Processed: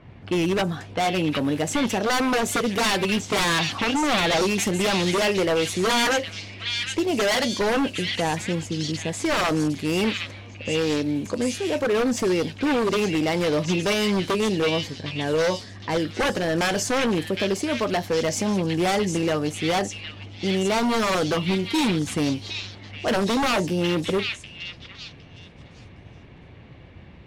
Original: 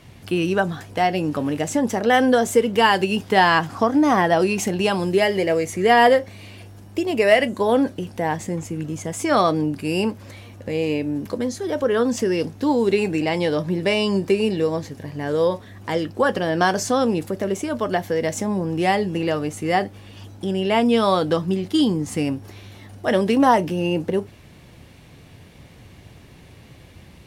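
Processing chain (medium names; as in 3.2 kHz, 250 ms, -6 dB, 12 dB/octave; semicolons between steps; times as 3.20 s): wavefolder -16.5 dBFS; repeats whose band climbs or falls 761 ms, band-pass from 3 kHz, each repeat 0.7 oct, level 0 dB; level-controlled noise filter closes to 1.8 kHz, open at -21.5 dBFS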